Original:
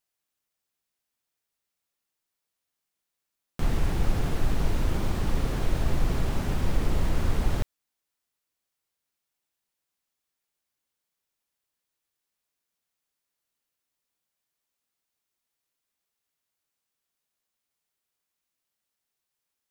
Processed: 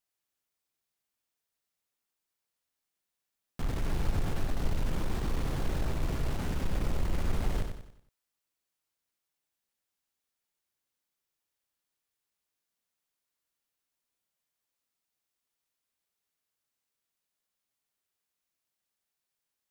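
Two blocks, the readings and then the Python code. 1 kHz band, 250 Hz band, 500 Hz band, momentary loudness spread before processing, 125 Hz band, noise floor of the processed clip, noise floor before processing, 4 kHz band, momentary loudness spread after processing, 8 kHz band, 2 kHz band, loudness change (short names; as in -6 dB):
-5.0 dB, -5.0 dB, -5.0 dB, 3 LU, -5.0 dB, under -85 dBFS, -85 dBFS, -4.5 dB, 4 LU, -4.5 dB, -4.5 dB, -5.0 dB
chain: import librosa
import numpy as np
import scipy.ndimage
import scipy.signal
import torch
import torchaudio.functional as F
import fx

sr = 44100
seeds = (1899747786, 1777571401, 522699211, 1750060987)

p1 = 10.0 ** (-26.0 / 20.0) * (np.abs((x / 10.0 ** (-26.0 / 20.0) + 3.0) % 4.0 - 2.0) - 1.0)
p2 = x + (p1 * 10.0 ** (-5.5 / 20.0))
p3 = fx.echo_feedback(p2, sr, ms=93, feedback_pct=41, wet_db=-6.5)
y = p3 * 10.0 ** (-7.0 / 20.0)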